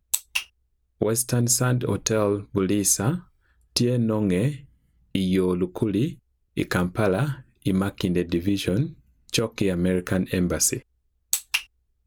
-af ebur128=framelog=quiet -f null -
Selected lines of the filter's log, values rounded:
Integrated loudness:
  I:         -24.2 LUFS
  Threshold: -34.7 LUFS
Loudness range:
  LRA:         2.5 LU
  Threshold: -44.7 LUFS
  LRA low:   -25.6 LUFS
  LRA high:  -23.1 LUFS